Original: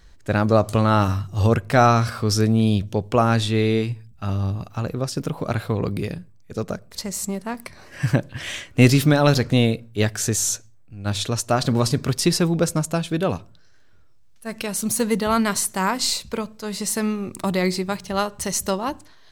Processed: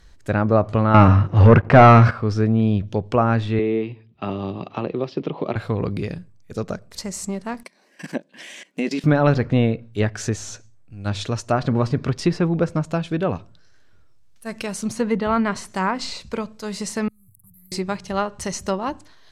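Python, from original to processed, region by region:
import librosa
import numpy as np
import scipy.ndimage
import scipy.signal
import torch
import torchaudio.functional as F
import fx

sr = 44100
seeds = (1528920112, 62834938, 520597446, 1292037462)

y = fx.chain(x, sr, fx.highpass(hz=81.0, slope=12),
    fx.high_shelf(hz=8100.0, db=-10.0),
    fx.leveller(passes=3), at=(0.94, 2.11))
y = fx.chain(y, sr, fx.cabinet(low_hz=200.0, low_slope=12, high_hz=3700.0, hz=(370.0, 1500.0, 3100.0), db=(7, -10, 3)),
    fx.band_squash(depth_pct=70), at=(3.59, 5.56))
y = fx.chain(y, sr, fx.peak_eq(hz=1300.0, db=-9.0, octaves=0.32),
    fx.level_steps(step_db=19),
    fx.brickwall_highpass(low_hz=170.0), at=(7.63, 9.04))
y = fx.chain(y, sr, fx.cheby2_bandstop(low_hz=270.0, high_hz=6000.0, order=4, stop_db=50),
    fx.low_shelf(hz=440.0, db=-10.5),
    fx.band_squash(depth_pct=100), at=(17.08, 17.72))
y = fx.env_lowpass_down(y, sr, base_hz=2400.0, full_db=-16.5)
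y = fx.dynamic_eq(y, sr, hz=3700.0, q=2.1, threshold_db=-44.0, ratio=4.0, max_db=-4)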